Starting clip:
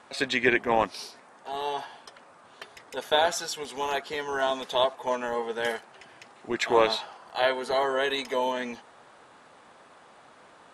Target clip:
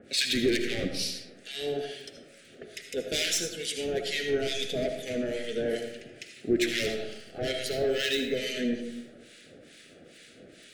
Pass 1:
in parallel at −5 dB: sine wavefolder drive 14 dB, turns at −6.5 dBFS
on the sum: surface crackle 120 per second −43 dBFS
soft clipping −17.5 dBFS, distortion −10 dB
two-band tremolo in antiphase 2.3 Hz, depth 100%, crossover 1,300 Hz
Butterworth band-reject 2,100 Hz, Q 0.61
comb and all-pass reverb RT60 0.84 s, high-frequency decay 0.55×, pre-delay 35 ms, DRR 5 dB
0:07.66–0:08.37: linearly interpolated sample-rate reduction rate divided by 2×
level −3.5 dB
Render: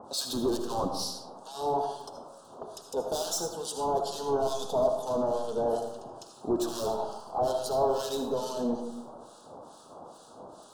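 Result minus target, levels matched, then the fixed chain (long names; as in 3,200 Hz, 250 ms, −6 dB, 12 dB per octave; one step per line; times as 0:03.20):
2,000 Hz band −19.0 dB; soft clipping: distortion +8 dB
in parallel at −5 dB: sine wavefolder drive 14 dB, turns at −6.5 dBFS
on the sum: surface crackle 120 per second −43 dBFS
soft clipping −11 dBFS, distortion −18 dB
two-band tremolo in antiphase 2.3 Hz, depth 100%, crossover 1,300 Hz
Butterworth band-reject 980 Hz, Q 0.61
comb and all-pass reverb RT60 0.84 s, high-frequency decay 0.55×, pre-delay 35 ms, DRR 5 dB
0:07.66–0:08.37: linearly interpolated sample-rate reduction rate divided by 2×
level −3.5 dB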